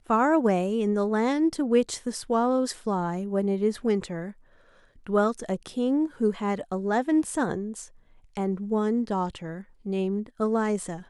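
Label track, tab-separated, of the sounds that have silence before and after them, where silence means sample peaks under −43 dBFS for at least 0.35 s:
5.070000	7.880000	sound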